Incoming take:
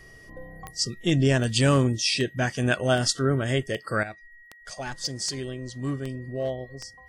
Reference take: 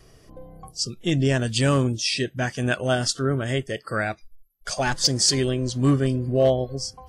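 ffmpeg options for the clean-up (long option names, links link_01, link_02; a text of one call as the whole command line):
ffmpeg -i in.wav -af "adeclick=threshold=4,bandreject=frequency=1900:width=30,asetnsamples=nb_out_samples=441:pad=0,asendcmd='4.03 volume volume 10.5dB',volume=0dB" out.wav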